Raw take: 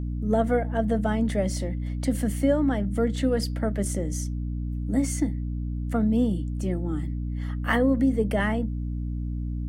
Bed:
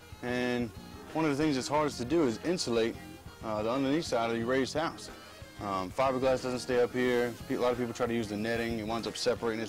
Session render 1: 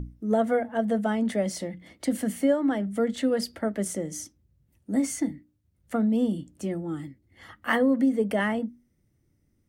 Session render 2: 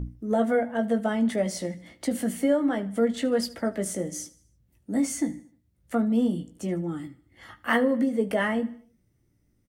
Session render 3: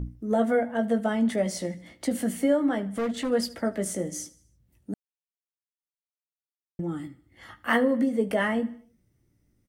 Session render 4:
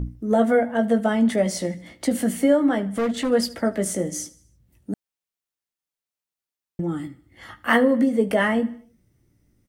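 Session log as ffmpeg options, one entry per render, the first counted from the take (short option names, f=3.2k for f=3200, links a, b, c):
-af "bandreject=f=60:t=h:w=6,bandreject=f=120:t=h:w=6,bandreject=f=180:t=h:w=6,bandreject=f=240:t=h:w=6,bandreject=f=300:t=h:w=6"
-filter_complex "[0:a]asplit=2[a][b];[b]adelay=17,volume=-6.5dB[c];[a][c]amix=inputs=2:normalize=0,aecho=1:1:76|152|228|304:0.106|0.0487|0.0224|0.0103"
-filter_complex "[0:a]asettb=1/sr,asplit=3[a][b][c];[a]atrim=end=2.884[d];[b]atrim=start=2.88:end=3.31,asetpts=PTS-STARTPTS,afade=t=in:d=0.004:c=qsin,afade=t=out:st=0.426:d=0.004:c=qsin,asoftclip=type=hard:threshold=-24.5dB[e];[c]atrim=start=3.306[f];[d][e]acrossfade=d=0.004:c1=hsin:c2=qsin[g];[g][f]acrossfade=d=0.004:c1=qsin:c2=hsin,asplit=3[h][i][j];[h]atrim=end=4.94,asetpts=PTS-STARTPTS,afade=t=out:st=4.936:d=0.004:c=hsin[k];[i]atrim=start=4.94:end=6.79,asetpts=PTS-STARTPTS,volume=0[l];[j]atrim=start=6.79,asetpts=PTS-STARTPTS,afade=t=in:d=0.004:c=hsin[m];[k][l][m]concat=n=3:v=0:a=1"
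-af "volume=5dB"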